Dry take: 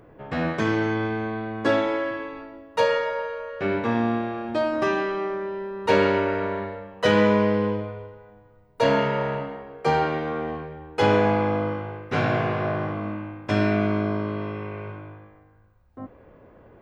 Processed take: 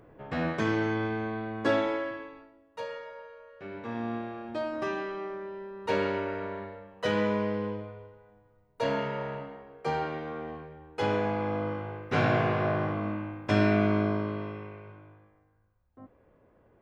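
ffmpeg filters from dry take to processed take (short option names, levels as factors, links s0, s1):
-af "volume=3.35,afade=t=out:st=1.86:d=0.68:silence=0.237137,afade=t=in:st=3.71:d=0.45:silence=0.398107,afade=t=in:st=11.34:d=0.89:silence=0.446684,afade=t=out:st=14.02:d=0.8:silence=0.316228"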